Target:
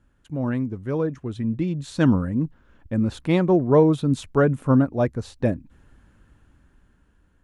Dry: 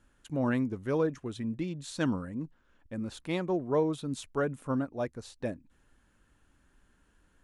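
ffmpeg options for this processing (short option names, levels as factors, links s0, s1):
-af "equalizer=f=88:t=o:w=2.7:g=7.5,dynaudnorm=f=370:g=9:m=3.35,highshelf=f=3500:g=-7.5"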